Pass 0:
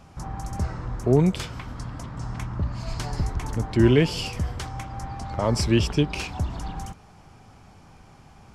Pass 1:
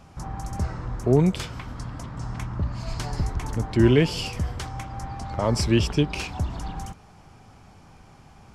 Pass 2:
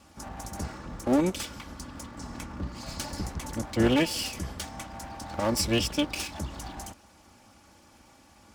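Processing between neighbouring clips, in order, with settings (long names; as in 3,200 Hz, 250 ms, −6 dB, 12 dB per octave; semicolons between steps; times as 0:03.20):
no processing that can be heard
lower of the sound and its delayed copy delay 3.5 ms; high-pass filter 59 Hz; high-shelf EQ 4,400 Hz +10 dB; level −4 dB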